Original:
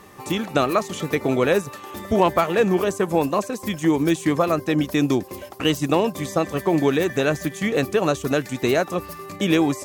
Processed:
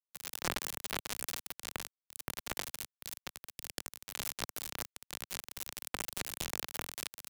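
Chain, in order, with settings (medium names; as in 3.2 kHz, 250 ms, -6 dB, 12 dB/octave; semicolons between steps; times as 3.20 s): harmony voices -5 st -3 dB, +5 st -17 dB; pre-emphasis filter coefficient 0.9; wide varispeed 1.35×; echo whose repeats swap between lows and highs 382 ms, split 920 Hz, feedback 51%, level -12 dB; in parallel at +2.5 dB: peak limiter -29.5 dBFS, peak gain reduction 13.5 dB; on the sum: treble shelf 5.5 kHz -8 dB; level held to a coarse grid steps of 24 dB; companded quantiser 2-bit; three bands expanded up and down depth 70%; trim +7.5 dB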